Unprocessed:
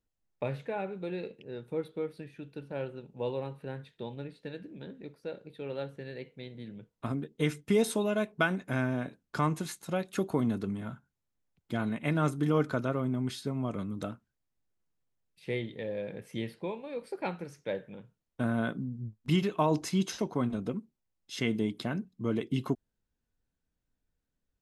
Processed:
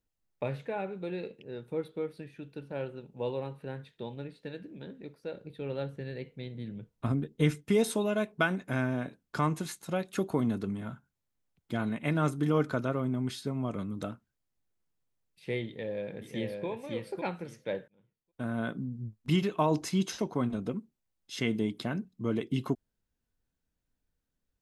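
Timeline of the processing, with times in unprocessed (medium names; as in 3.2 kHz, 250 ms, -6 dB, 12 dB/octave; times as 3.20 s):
5.35–7.55 s: bass shelf 170 Hz +9.5 dB
15.66–16.66 s: echo throw 550 ms, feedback 15%, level -3.5 dB
17.88–18.85 s: fade in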